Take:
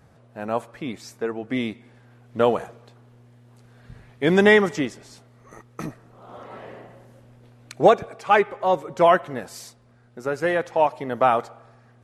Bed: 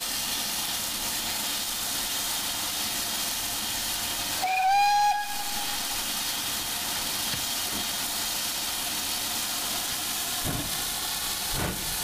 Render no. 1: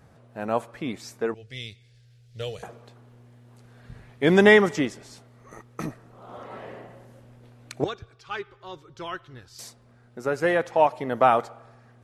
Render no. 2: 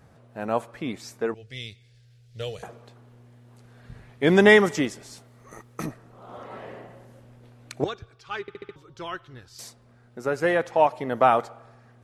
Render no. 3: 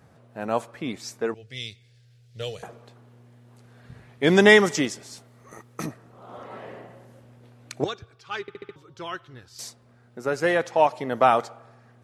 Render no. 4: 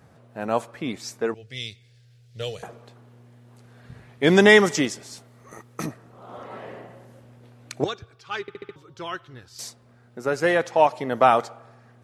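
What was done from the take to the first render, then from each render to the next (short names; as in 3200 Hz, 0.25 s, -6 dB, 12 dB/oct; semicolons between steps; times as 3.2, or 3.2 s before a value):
1.34–2.63 EQ curve 110 Hz 0 dB, 160 Hz -9 dB, 270 Hz -29 dB, 450 Hz -12 dB, 990 Hz -29 dB, 1900 Hz -10 dB, 4800 Hz +6 dB, 10000 Hz -3 dB; 7.84–9.59 EQ curve 110 Hz 0 dB, 190 Hz -20 dB, 370 Hz -13 dB, 610 Hz -27 dB, 1400 Hz -11 dB, 2100 Hz -16 dB, 3400 Hz -5 dB, 5200 Hz -5 dB, 8500 Hz -17 dB
4.49–5.86 high shelf 6300 Hz +7 dB; 8.41 stutter in place 0.07 s, 5 plays
HPF 78 Hz; dynamic EQ 5700 Hz, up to +7 dB, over -46 dBFS, Q 0.78
gain +1.5 dB; limiter -3 dBFS, peak gain reduction 1.5 dB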